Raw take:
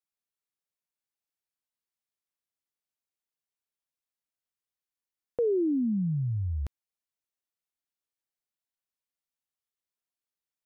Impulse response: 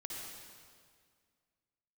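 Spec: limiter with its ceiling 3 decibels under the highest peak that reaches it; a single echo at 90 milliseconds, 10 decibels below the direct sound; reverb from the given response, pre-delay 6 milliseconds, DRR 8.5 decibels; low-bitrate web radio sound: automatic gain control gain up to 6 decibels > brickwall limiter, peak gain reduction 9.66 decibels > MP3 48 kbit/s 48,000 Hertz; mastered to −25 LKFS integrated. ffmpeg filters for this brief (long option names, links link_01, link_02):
-filter_complex "[0:a]alimiter=level_in=0.5dB:limit=-24dB:level=0:latency=1,volume=-0.5dB,aecho=1:1:90:0.316,asplit=2[link_01][link_02];[1:a]atrim=start_sample=2205,adelay=6[link_03];[link_02][link_03]afir=irnorm=-1:irlink=0,volume=-7.5dB[link_04];[link_01][link_04]amix=inputs=2:normalize=0,dynaudnorm=maxgain=6dB,alimiter=level_in=4dB:limit=-24dB:level=0:latency=1,volume=-4dB,volume=11dB" -ar 48000 -c:a libmp3lame -b:a 48k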